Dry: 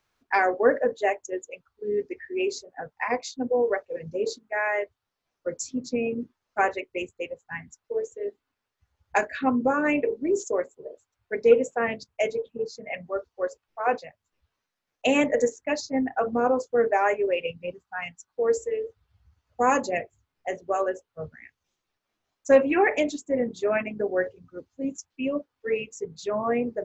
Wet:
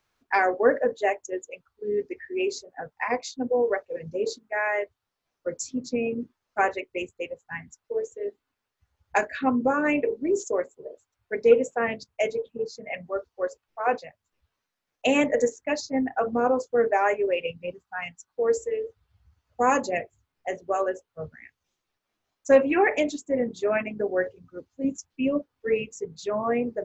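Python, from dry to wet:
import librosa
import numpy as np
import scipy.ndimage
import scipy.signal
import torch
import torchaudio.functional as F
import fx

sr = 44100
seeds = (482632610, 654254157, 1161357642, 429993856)

y = fx.low_shelf(x, sr, hz=320.0, db=6.5, at=(24.84, 26.0))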